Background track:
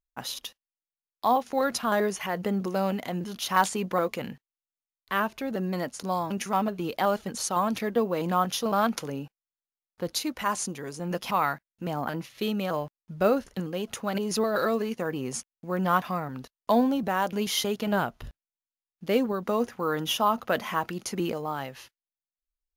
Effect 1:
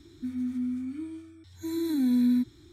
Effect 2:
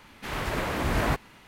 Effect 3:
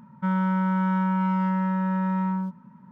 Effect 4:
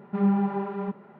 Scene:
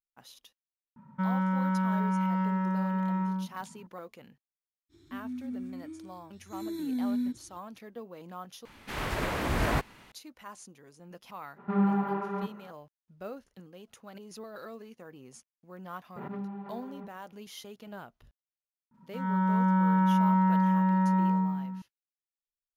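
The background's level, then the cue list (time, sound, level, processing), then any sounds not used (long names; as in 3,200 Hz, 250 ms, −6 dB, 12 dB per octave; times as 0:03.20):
background track −18 dB
0:00.96: mix in 3 −4.5 dB
0:04.89: mix in 1 −7 dB, fades 0.05 s
0:08.65: overwrite with 2 −2 dB
0:11.55: mix in 4 −3.5 dB, fades 0.05 s + parametric band 1,300 Hz +7.5 dB 0.91 octaves
0:16.16: mix in 4 −16.5 dB + background raised ahead of every attack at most 28 dB per second
0:18.91: mix in 3 −16.5 dB + four-comb reverb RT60 1.5 s, combs from 33 ms, DRR −6 dB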